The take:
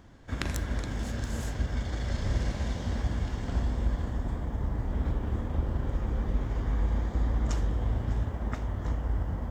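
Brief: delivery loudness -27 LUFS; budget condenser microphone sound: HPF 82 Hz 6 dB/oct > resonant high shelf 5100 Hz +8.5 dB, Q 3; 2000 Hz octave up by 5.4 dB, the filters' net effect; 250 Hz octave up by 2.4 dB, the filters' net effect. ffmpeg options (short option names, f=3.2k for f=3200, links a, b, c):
-af "highpass=f=82:p=1,equalizer=f=250:t=o:g=3.5,equalizer=f=2k:t=o:g=8,highshelf=f=5.1k:t=q:w=3:g=8.5,volume=6dB"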